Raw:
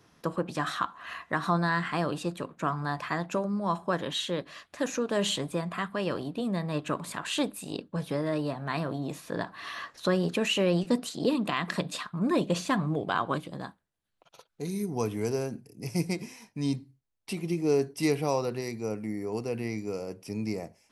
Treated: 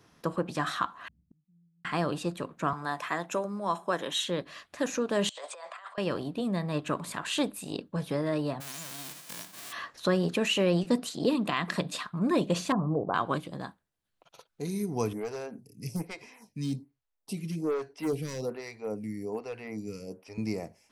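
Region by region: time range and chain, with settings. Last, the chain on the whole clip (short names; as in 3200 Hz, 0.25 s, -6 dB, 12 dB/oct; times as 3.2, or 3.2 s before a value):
1.08–1.85 inverse Chebyshev low-pass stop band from 1100 Hz, stop band 80 dB + flipped gate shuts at -44 dBFS, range -33 dB
2.73–4.24 HPF 140 Hz + tone controls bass -8 dB, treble +5 dB + notch 4600 Hz, Q 5.3
5.29–5.98 Chebyshev band-pass 550–8400 Hz, order 4 + negative-ratio compressor -45 dBFS
8.6–9.71 spectral whitening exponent 0.1 + HPF 130 Hz + compressor 3:1, threshold -40 dBFS
12.72–13.14 steep low-pass 1200 Hz + bell 500 Hz +4.5 dB 0.35 oct
15.13–20.38 hard clip -23.5 dBFS + notch 350 Hz, Q 7.3 + photocell phaser 1.2 Hz
whole clip: dry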